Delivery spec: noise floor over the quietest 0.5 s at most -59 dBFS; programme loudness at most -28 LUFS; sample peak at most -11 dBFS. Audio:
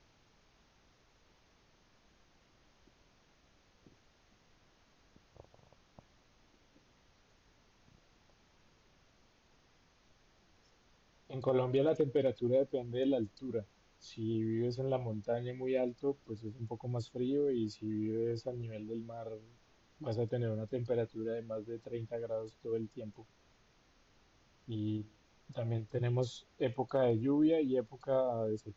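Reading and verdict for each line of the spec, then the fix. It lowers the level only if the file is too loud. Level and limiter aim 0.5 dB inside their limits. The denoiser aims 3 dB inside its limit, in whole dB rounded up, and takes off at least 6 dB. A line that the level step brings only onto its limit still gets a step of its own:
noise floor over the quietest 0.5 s -68 dBFS: pass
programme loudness -36.0 LUFS: pass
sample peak -21.0 dBFS: pass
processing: none needed

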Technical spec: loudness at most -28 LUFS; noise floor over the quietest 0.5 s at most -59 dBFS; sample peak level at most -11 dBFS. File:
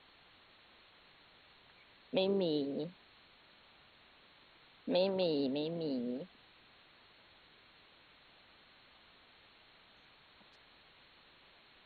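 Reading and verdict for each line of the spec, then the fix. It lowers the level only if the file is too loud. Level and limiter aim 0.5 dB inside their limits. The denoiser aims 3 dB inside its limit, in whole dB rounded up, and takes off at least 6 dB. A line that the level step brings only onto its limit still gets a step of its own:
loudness -36.0 LUFS: pass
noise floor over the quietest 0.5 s -63 dBFS: pass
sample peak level -19.5 dBFS: pass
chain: none needed

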